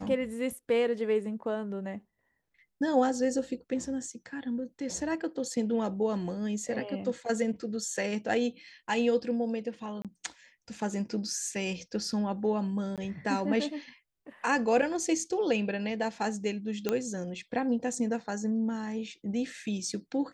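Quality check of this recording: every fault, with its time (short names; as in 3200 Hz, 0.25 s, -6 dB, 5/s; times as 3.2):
10.02–10.05 gap 27 ms
12.96–12.98 gap 17 ms
16.89 pop -14 dBFS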